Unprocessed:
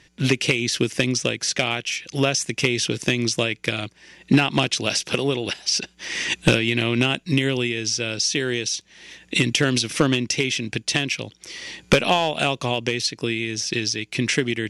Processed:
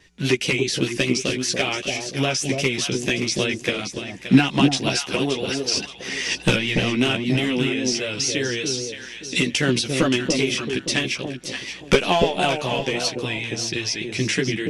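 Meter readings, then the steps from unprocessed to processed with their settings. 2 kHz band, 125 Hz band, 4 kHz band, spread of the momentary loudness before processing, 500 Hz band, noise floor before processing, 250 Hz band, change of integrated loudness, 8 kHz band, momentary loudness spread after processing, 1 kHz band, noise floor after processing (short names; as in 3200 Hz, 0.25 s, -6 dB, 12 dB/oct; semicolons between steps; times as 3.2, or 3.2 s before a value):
-0.5 dB, -1.0 dB, -0.5 dB, 7 LU, +1.0 dB, -57 dBFS, +1.5 dB, 0.0 dB, -0.5 dB, 7 LU, +0.5 dB, -39 dBFS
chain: chorus voices 6, 0.53 Hz, delay 13 ms, depth 2.9 ms; echo with dull and thin repeats by turns 0.287 s, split 800 Hz, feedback 52%, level -3 dB; vibrato 5 Hz 44 cents; gain +2 dB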